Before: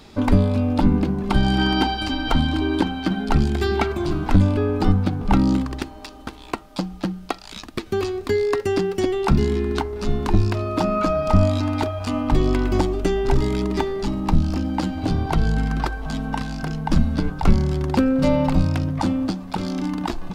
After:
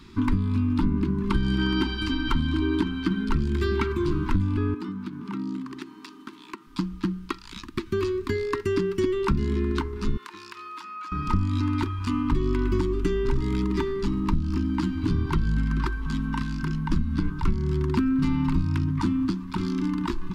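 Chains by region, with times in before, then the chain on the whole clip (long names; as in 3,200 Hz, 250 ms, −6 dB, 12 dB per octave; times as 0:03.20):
0:04.74–0:06.67: high-pass filter 170 Hz 24 dB per octave + downward compressor 2.5 to 1, threshold −32 dBFS
0:10.17–0:11.12: high-pass filter 1,100 Hz + downward compressor 5 to 1, threshold −32 dBFS
whole clip: elliptic band-stop filter 380–970 Hz, stop band 40 dB; high-shelf EQ 3,100 Hz −8 dB; downward compressor 6 to 1, threshold −19 dBFS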